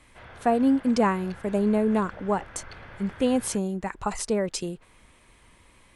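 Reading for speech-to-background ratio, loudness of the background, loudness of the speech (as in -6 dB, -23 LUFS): 19.5 dB, -45.5 LUFS, -26.0 LUFS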